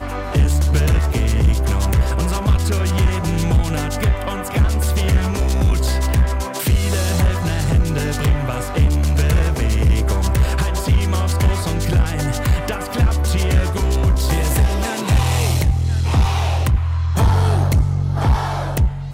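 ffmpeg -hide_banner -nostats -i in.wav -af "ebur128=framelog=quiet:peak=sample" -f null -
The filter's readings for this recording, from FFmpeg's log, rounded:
Integrated loudness:
  I:         -18.2 LUFS
  Threshold: -28.2 LUFS
Loudness range:
  LRA:         1.1 LU
  Threshold: -38.3 LUFS
  LRA low:   -18.8 LUFS
  LRA high:  -17.7 LUFS
Sample peak:
  Peak:       -5.7 dBFS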